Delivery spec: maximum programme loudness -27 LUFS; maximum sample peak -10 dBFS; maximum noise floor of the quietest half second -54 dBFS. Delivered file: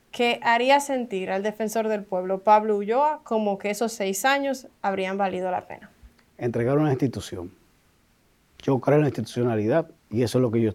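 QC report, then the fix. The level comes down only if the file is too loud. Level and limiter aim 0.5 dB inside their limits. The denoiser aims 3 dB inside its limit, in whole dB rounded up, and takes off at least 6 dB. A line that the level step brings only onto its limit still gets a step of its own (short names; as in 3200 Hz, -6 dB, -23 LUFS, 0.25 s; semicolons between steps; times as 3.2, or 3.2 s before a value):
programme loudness -24.0 LUFS: fail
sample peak -6.0 dBFS: fail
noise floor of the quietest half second -63 dBFS: OK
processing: gain -3.5 dB; limiter -10.5 dBFS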